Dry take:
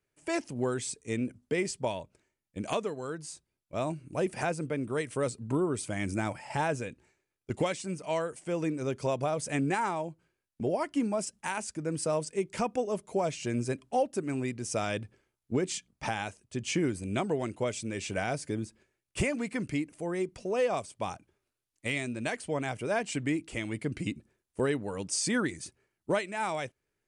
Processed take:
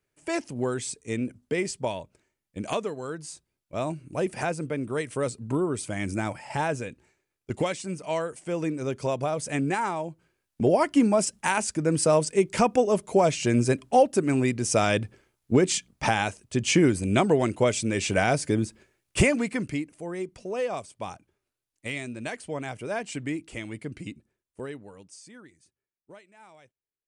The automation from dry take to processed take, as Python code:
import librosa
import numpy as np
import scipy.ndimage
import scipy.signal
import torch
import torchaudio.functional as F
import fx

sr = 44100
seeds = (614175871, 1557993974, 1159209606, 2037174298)

y = fx.gain(x, sr, db=fx.line((10.01, 2.5), (10.67, 9.0), (19.24, 9.0), (19.95, -1.0), (23.57, -1.0), (24.86, -9.5), (25.28, -20.0)))